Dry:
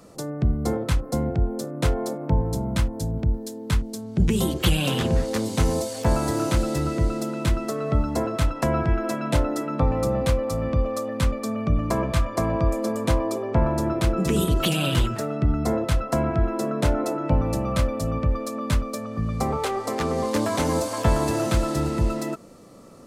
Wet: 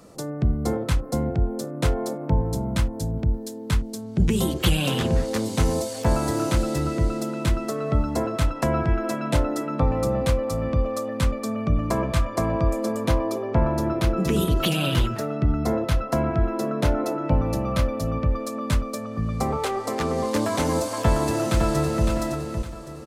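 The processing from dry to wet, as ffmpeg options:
ffmpeg -i in.wav -filter_complex "[0:a]asettb=1/sr,asplit=3[link_01][link_02][link_03];[link_01]atrim=end=13.004[link_04];[link_02]atrim=start=13:end=18.39,asetpts=PTS-STARTPTS,afade=type=in:duration=0.004:curve=qsin,afade=type=out:start_time=5.386:duration=0.004:curve=qsin,equalizer=frequency=8000:width_type=o:width=0.32:gain=-7[link_05];[link_03]atrim=start=18.386[link_06];[link_04][link_05]acrossfade=duration=0.004:curve1=hsin:curve2=qsin[link_07];[link_07][link_06]acrossfade=duration=0.004:curve1=qsin:curve2=hsin,asplit=2[link_08][link_09];[link_09]afade=type=in:start_time=21.01:duration=0.01,afade=type=out:start_time=22.06:duration=0.01,aecho=0:1:560|1120|1680|2240:0.501187|0.175416|0.0613954|0.0214884[link_10];[link_08][link_10]amix=inputs=2:normalize=0" out.wav

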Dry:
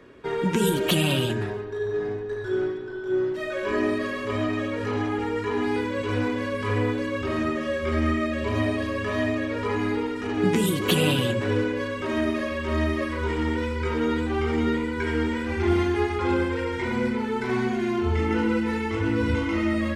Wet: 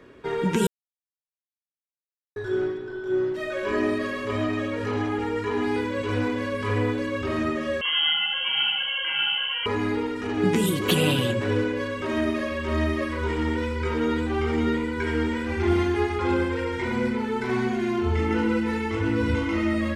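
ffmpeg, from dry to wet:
ffmpeg -i in.wav -filter_complex "[0:a]asettb=1/sr,asplit=3[link_01][link_02][link_03];[link_01]atrim=end=7.814[link_04];[link_02]atrim=start=7.81:end=9.66,asetpts=PTS-STARTPTS,afade=type=in:duration=0.004:curve=qsin,afade=type=out:start_time=1.846:duration=0.004:curve=qsin,lowpass=frequency=2800:width_type=q:width=0.5098,lowpass=frequency=2800:width_type=q:width=0.6013,lowpass=frequency=2800:width_type=q:width=0.9,lowpass=frequency=2800:width_type=q:width=2.563,afreqshift=-3300[link_05];[link_03]atrim=start=9.656[link_06];[link_04][link_05]acrossfade=duration=0.004:curve1=hsin:curve2=qsin[link_07];[link_07][link_06]acrossfade=duration=0.004:curve1=qsin:curve2=hsin,asplit=3[link_08][link_09][link_10];[link_08]atrim=end=0.67,asetpts=PTS-STARTPTS,afade=type=out:start_time=0.666:duration=0.004:curve=hsin[link_11];[link_09]atrim=start=0.67:end=2.36,asetpts=PTS-STARTPTS,volume=0[link_12];[link_10]atrim=start=2.36,asetpts=PTS-STARTPTS,afade=type=in:duration=0.004:curve=hsin[link_13];[link_11][link_12][link_13]concat=n=3:v=0:a=1" out.wav

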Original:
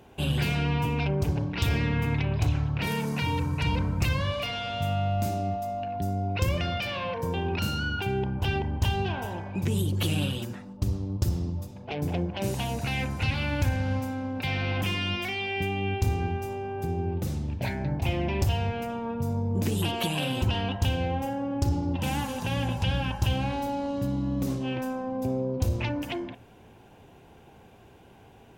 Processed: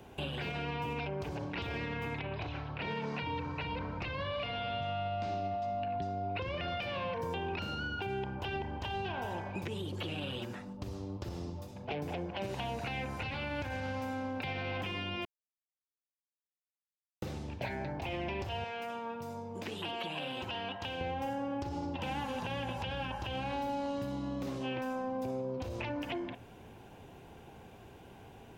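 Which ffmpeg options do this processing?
ffmpeg -i in.wav -filter_complex "[0:a]asettb=1/sr,asplit=3[link_01][link_02][link_03];[link_01]atrim=end=2.194[link_04];[link_02]atrim=start=2.19:end=6.68,asetpts=PTS-STARTPTS,afade=type=in:duration=0.004:curve=qsin,afade=type=out:start_time=4.486:duration=0.004:curve=qsin,lowpass=frequency=4600:width=0.5412,lowpass=frequency=4600:width=1.3066[link_05];[link_03]atrim=start=6.676[link_06];[link_04][link_05]acrossfade=duration=0.004:curve1=hsin:curve2=qsin[link_07];[link_07][link_06]acrossfade=duration=0.004:curve1=qsin:curve2=hsin,asettb=1/sr,asplit=3[link_08][link_09][link_10];[link_08]atrim=end=18.644[link_11];[link_09]atrim=start=18.64:end=21.01,asetpts=PTS-STARTPTS,afade=type=in:duration=0.004:curve=qsin,afade=type=out:start_time=2.366:duration=0.004:curve=qsin,highpass=frequency=1000:poles=1[link_12];[link_10]atrim=start=21.006[link_13];[link_11][link_12]acrossfade=duration=0.004:curve1=hsin:curve2=qsin[link_14];[link_14][link_13]acrossfade=duration=0.004:curve1=qsin:curve2=hsin,asplit=3[link_15][link_16][link_17];[link_15]atrim=end=15.25,asetpts=PTS-STARTPTS,afade=type=out:start_time=15.246:duration=0.004:curve=hsin[link_18];[link_16]atrim=start=15.25:end=17.22,asetpts=PTS-STARTPTS,volume=0[link_19];[link_17]atrim=start=17.22,asetpts=PTS-STARTPTS,afade=type=in:duration=0.004:curve=hsin[link_20];[link_18][link_19][link_20]concat=n=3:v=0:a=1,acrossover=split=5100[link_21][link_22];[link_22]acompressor=threshold=-56dB:ratio=4:attack=1:release=60[link_23];[link_21][link_23]amix=inputs=2:normalize=0,alimiter=limit=-21dB:level=0:latency=1:release=60,acrossover=split=340|840|3800[link_24][link_25][link_26][link_27];[link_24]acompressor=threshold=-43dB:ratio=4[link_28];[link_25]acompressor=threshold=-39dB:ratio=4[link_29];[link_26]acompressor=threshold=-41dB:ratio=4[link_30];[link_27]acompressor=threshold=-58dB:ratio=4[link_31];[link_28][link_29][link_30][link_31]amix=inputs=4:normalize=0" out.wav

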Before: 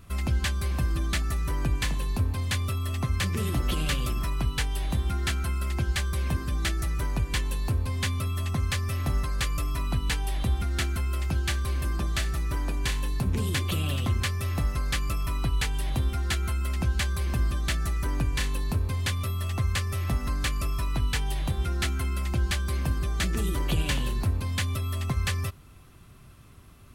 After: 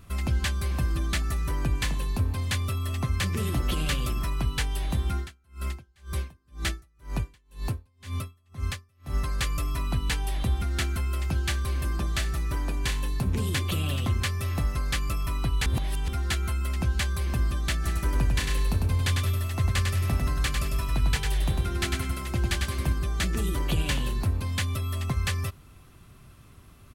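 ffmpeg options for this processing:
ffmpeg -i in.wav -filter_complex "[0:a]asettb=1/sr,asplit=3[link_01][link_02][link_03];[link_01]atrim=end=5.174[link_04];[link_02]atrim=start=5.17:end=9.17,asetpts=PTS-STARTPTS,afade=type=in:duration=0.004:curve=qsin,afade=type=out:start_time=3.996:duration=0.004:curve=qsin,aeval=exprs='val(0)*pow(10,-38*(0.5-0.5*cos(2*PI*2*n/s))/20)':channel_layout=same[link_05];[link_03]atrim=start=9.166[link_06];[link_04][link_05]acrossfade=duration=0.004:curve1=hsin:curve2=qsin[link_07];[link_07][link_06]acrossfade=duration=0.004:curve1=qsin:curve2=hsin,asplit=3[link_08][link_09][link_10];[link_08]afade=type=out:start_time=17.83:duration=0.02[link_11];[link_09]aecho=1:1:100|200|300|400:0.631|0.189|0.0568|0.017,afade=type=in:start_time=17.83:duration=0.02,afade=type=out:start_time=22.92:duration=0.02[link_12];[link_10]afade=type=in:start_time=22.92:duration=0.02[link_13];[link_11][link_12][link_13]amix=inputs=3:normalize=0,asplit=3[link_14][link_15][link_16];[link_14]atrim=end=15.662[link_17];[link_15]atrim=start=15.658:end=16.082,asetpts=PTS-STARTPTS,areverse[link_18];[link_16]atrim=start=16.078[link_19];[link_17][link_18]acrossfade=duration=0.004:curve1=hsin:curve2=hsin[link_20];[link_20][link_19]acrossfade=duration=0.004:curve1=hsin:curve2=hsin" out.wav

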